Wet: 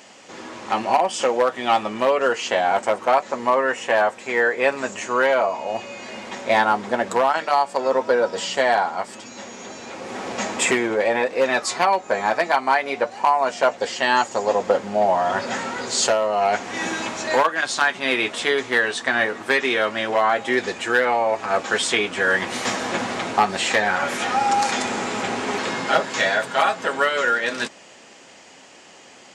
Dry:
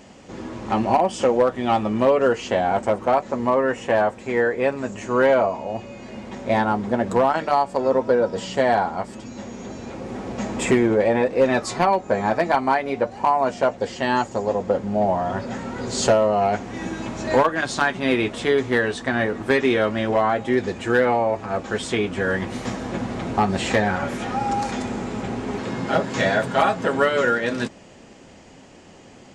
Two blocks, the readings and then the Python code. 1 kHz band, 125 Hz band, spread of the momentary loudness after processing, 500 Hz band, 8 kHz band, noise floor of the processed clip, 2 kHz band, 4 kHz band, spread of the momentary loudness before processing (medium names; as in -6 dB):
+2.0 dB, -11.0 dB, 8 LU, -1.0 dB, +6.5 dB, -46 dBFS, +4.5 dB, +6.0 dB, 11 LU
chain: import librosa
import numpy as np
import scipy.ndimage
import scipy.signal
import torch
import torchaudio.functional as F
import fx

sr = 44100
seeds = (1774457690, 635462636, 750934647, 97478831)

y = fx.highpass(x, sr, hz=1200.0, slope=6)
y = fx.rider(y, sr, range_db=5, speed_s=0.5)
y = y * librosa.db_to_amplitude(7.0)